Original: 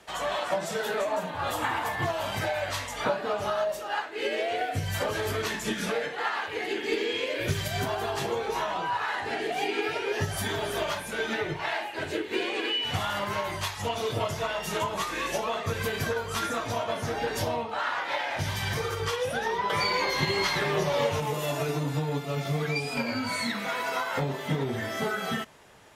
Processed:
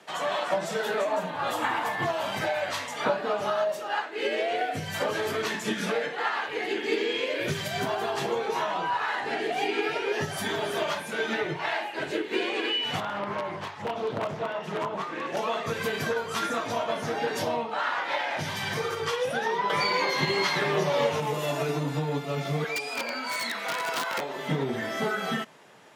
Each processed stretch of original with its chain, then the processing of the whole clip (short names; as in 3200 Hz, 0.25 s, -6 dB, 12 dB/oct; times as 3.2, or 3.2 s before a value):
13–15.37 wrapped overs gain 20 dB + LPF 1200 Hz 6 dB/oct + Doppler distortion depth 0.37 ms
22.64–24.36 HPF 480 Hz + wrapped overs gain 22.5 dB
whole clip: HPF 140 Hz 24 dB/oct; high shelf 7600 Hz -7 dB; gain +1.5 dB